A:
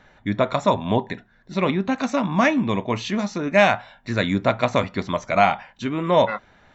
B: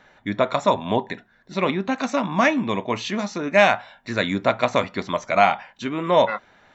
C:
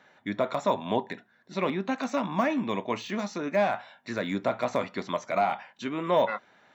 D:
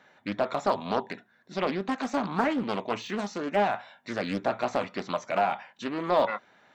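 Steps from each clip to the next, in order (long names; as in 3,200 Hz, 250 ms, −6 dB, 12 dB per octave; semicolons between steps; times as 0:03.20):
low-shelf EQ 150 Hz −11.5 dB; level +1 dB
de-essing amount 90%; high-pass filter 140 Hz 12 dB per octave; level −5 dB
highs frequency-modulated by the lows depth 0.46 ms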